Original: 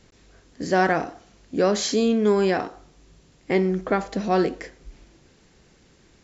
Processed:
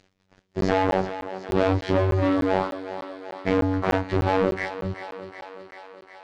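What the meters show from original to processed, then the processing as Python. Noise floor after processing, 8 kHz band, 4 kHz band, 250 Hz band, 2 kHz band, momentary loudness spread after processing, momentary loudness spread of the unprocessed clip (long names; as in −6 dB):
−68 dBFS, can't be measured, −5.0 dB, −1.0 dB, −1.5 dB, 17 LU, 16 LU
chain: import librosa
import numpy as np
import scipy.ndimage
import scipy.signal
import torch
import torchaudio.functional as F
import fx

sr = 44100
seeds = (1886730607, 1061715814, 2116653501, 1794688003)

p1 = fx.spec_dilate(x, sr, span_ms=60)
p2 = fx.env_lowpass_down(p1, sr, base_hz=810.0, full_db=-15.0)
p3 = fx.dereverb_blind(p2, sr, rt60_s=0.87)
p4 = fx.high_shelf(p3, sr, hz=5900.0, db=-8.0)
p5 = fx.leveller(p4, sr, passes=5)
p6 = p5 * np.sin(2.0 * np.pi * 120.0 * np.arange(len(p5)) / sr)
p7 = fx.robotise(p6, sr, hz=94.6)
p8 = fx.air_absorb(p7, sr, metres=100.0)
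p9 = p8 + fx.echo_thinned(p8, sr, ms=375, feedback_pct=73, hz=270.0, wet_db=-10.5, dry=0)
p10 = fx.buffer_crackle(p9, sr, first_s=0.61, period_s=0.3, block=512, kind='zero')
y = F.gain(torch.from_numpy(p10), -4.5).numpy()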